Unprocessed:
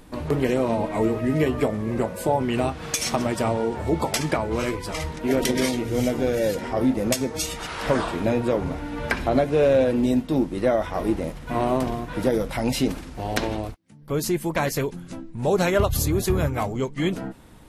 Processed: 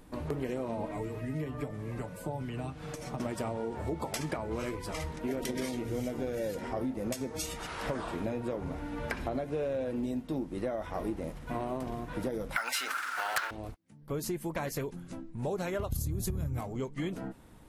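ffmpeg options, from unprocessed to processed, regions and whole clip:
-filter_complex "[0:a]asettb=1/sr,asplit=3[a][b][c];[a]atrim=end=0.914[d];[b]atrim=start=0.91:end=3.2,asetpts=PTS-STARTPTS,afade=t=in:d=0.004:c=qsin,afade=t=out:st=2.286:d=0.004:c=qsin,acrossover=split=210|800|1600[e][f][g][h];[e]acompressor=threshold=-31dB:ratio=3[i];[f]acompressor=threshold=-37dB:ratio=3[j];[g]acompressor=threshold=-45dB:ratio=3[k];[h]acompressor=threshold=-46dB:ratio=3[l];[i][j][k][l]amix=inputs=4:normalize=0,aecho=1:1:6.8:0.51,atrim=end_sample=100989[m];[c]atrim=start=3.196[n];[d][m]acrossfade=d=0.004:c1=hsin:c2=qsin[o];[o][n]acrossfade=d=0.004:c1=qsin:c2=hsin,asettb=1/sr,asplit=3[p][q][r];[p]atrim=end=12.564[s];[q]atrim=start=12.56:end=13.51,asetpts=PTS-STARTPTS,afade=t=in:d=0.004:c=qsin,afade=t=out:st=0.946:d=0.004:c=qsin,highpass=f=1.4k:t=q:w=8,acrusher=bits=6:mode=log:mix=0:aa=0.000001,aeval=exprs='0.944*sin(PI/2*3.55*val(0)/0.944)':c=same[t];[r]atrim=start=13.506[u];[s][t]acrossfade=d=0.004:c1=hsin:c2=qsin[v];[v][u]acrossfade=d=0.004:c1=qsin:c2=hsin,asettb=1/sr,asplit=3[w][x][y];[w]atrim=end=15.924[z];[x]atrim=start=15.92:end=16.61,asetpts=PTS-STARTPTS,afade=t=in:d=0.004:c=qsin,afade=t=out:st=0.686:d=0.004:c=qsin,bass=f=250:g=15,treble=f=4k:g=10,acompressor=threshold=-13dB:ratio=3:attack=3.2:release=140:knee=1:detection=peak[aa];[y]atrim=start=16.606[ab];[z][aa]acrossfade=d=0.004:c1=hsin:c2=qsin[ac];[ac][ab]acrossfade=d=0.004:c1=qsin:c2=hsin,equalizer=f=3.8k:w=0.67:g=-3,acompressor=threshold=-24dB:ratio=6,volume=-6.5dB"

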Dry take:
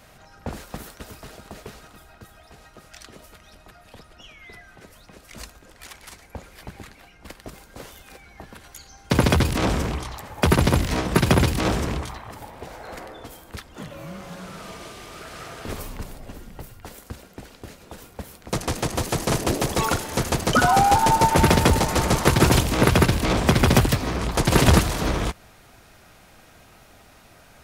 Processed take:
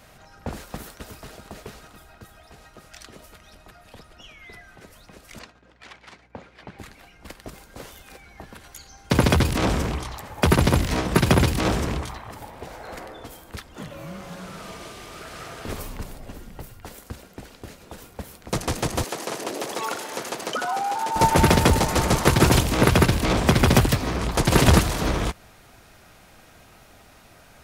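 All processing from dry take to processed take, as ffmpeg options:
-filter_complex "[0:a]asettb=1/sr,asplit=3[a][b][c];[a]atrim=end=5.394[d];[b]atrim=start=5.39:end=6.79,asetpts=PTS-STARTPTS,afade=t=in:d=0.004:c=qsin,afade=t=out:st=1.396:d=0.004:c=qsin,agate=range=-33dB:threshold=-45dB:ratio=3:release=100:detection=peak,highpass=140,lowpass=3.7k,aeval=exprs='val(0)+0.001*(sin(2*PI*60*n/s)+sin(2*PI*2*60*n/s)/2+sin(2*PI*3*60*n/s)/3+sin(2*PI*4*60*n/s)/4+sin(2*PI*5*60*n/s)/5)':c=same[e];[c]atrim=start=6.786[f];[d][e]acrossfade=d=0.004:c1=hsin:c2=qsin[g];[g][f]acrossfade=d=0.004:c1=qsin:c2=hsin,asettb=1/sr,asplit=3[h][i][j];[h]atrim=end=19.044[k];[i]atrim=start=19.04:end=21.16,asetpts=PTS-STARTPTS,afade=t=in:d=0.004:c=qsin,afade=t=out:st=2.116:d=0.004:c=qsin,highshelf=f=8.2k:g=-5.5,acompressor=threshold=-22dB:ratio=6:attack=3.2:release=140:knee=1:detection=peak,highpass=350[l];[j]atrim=start=21.156[m];[k][l]acrossfade=d=0.004:c1=hsin:c2=qsin[n];[n][m]acrossfade=d=0.004:c1=qsin:c2=hsin"

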